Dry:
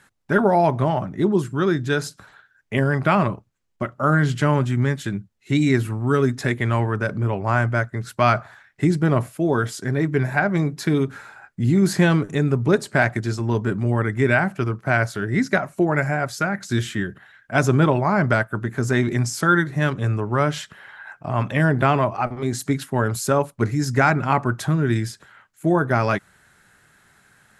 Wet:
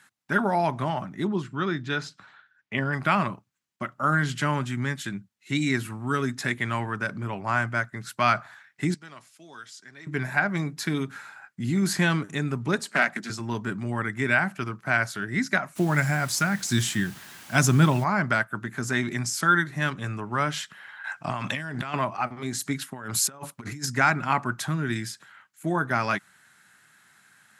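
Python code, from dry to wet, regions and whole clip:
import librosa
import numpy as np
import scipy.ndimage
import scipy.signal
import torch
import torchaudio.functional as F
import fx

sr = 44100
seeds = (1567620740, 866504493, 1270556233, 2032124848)

y = fx.chain(x, sr, fx.lowpass(hz=4100.0, slope=12),
    fx.notch(hz=1600.0, q=21.0), at=(1.27, 2.93))
y = fx.chain(y, sr, fx.bandpass_q(hz=5600.0, q=1.2),
    fx.tilt_eq(slope=-3.0),
    fx.band_squash(depth_pct=40), at=(8.94, 10.07))
y = fx.chain(y, sr, fx.steep_highpass(hz=160.0, slope=48),
    fx.notch(hz=350.0, q=10.0),
    fx.doppler_dist(depth_ms=0.21), at=(12.79, 13.3))
y = fx.bass_treble(y, sr, bass_db=9, treble_db=9, at=(15.75, 18.03), fade=0.02)
y = fx.dmg_noise_colour(y, sr, seeds[0], colour='pink', level_db=-43.0, at=(15.75, 18.03), fade=0.02)
y = fx.chain(y, sr, fx.lowpass(hz=9100.0, slope=12),
    fx.high_shelf(hz=3100.0, db=8.5),
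    fx.over_compress(threshold_db=-25.0, ratio=-1.0), at=(21.04, 21.94))
y = fx.chain(y, sr, fx.low_shelf(hz=130.0, db=-2.5),
    fx.over_compress(threshold_db=-26.0, ratio=-0.5), at=(22.92, 23.86))
y = scipy.signal.sosfilt(scipy.signal.butter(2, 200.0, 'highpass', fs=sr, output='sos'), y)
y = fx.peak_eq(y, sr, hz=460.0, db=-11.5, octaves=1.5)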